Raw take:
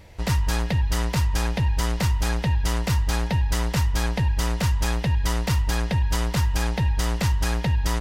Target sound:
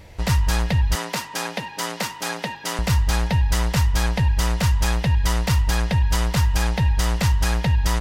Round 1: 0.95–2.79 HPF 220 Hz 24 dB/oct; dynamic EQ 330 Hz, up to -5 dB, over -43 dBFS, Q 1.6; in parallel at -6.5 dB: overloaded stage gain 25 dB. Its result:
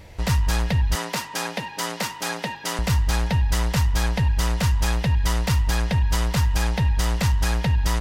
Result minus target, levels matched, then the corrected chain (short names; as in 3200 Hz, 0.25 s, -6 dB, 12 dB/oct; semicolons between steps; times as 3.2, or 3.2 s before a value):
overloaded stage: distortion +21 dB
0.95–2.79 HPF 220 Hz 24 dB/oct; dynamic EQ 330 Hz, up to -5 dB, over -43 dBFS, Q 1.6; in parallel at -6.5 dB: overloaded stage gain 16 dB